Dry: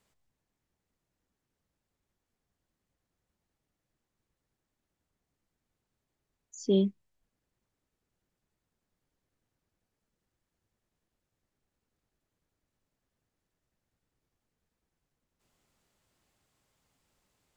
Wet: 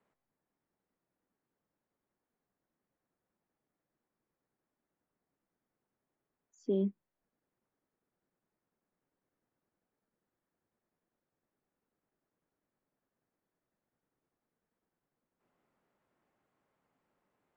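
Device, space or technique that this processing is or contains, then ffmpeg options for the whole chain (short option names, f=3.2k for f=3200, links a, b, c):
DJ mixer with the lows and highs turned down: -filter_complex "[0:a]acrossover=split=160 2100:gain=0.158 1 0.0891[a][b][c];[a][b][c]amix=inputs=3:normalize=0,alimiter=limit=-23dB:level=0:latency=1"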